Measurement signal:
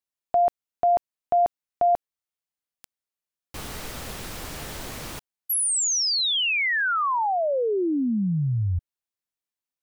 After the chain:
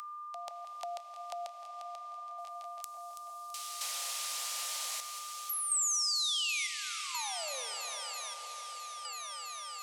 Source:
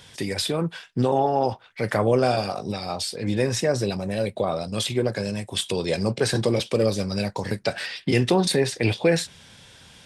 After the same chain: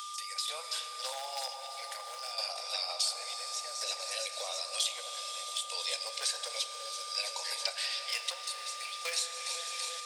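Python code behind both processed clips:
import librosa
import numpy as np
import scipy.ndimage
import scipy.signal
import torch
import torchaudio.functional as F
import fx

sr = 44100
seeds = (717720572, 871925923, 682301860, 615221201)

y = scipy.signal.sosfilt(scipy.signal.butter(2, 8000.0, 'lowpass', fs=sr, output='sos'), x)
y = fx.peak_eq(y, sr, hz=1600.0, db=-6.0, octaves=0.63)
y = fx.echo_alternate(y, sr, ms=165, hz=1900.0, feedback_pct=86, wet_db=-13)
y = fx.clip_asym(y, sr, top_db=-14.0, bottom_db=-13.0)
y = fx.rider(y, sr, range_db=3, speed_s=0.5)
y = fx.step_gate(y, sr, bpm=63, pattern='..xxxxx...xxxx', floor_db=-12.0, edge_ms=4.5)
y = y + 10.0 ** (-37.0 / 20.0) * np.sin(2.0 * np.pi * 1200.0 * np.arange(len(y)) / sr)
y = scipy.signal.sosfilt(scipy.signal.butter(12, 500.0, 'highpass', fs=sr, output='sos'), y)
y = np.diff(y, prepend=0.0)
y = fx.rev_plate(y, sr, seeds[0], rt60_s=4.7, hf_ratio=0.8, predelay_ms=0, drr_db=8.0)
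y = fx.band_squash(y, sr, depth_pct=70)
y = y * 10.0 ** (4.0 / 20.0)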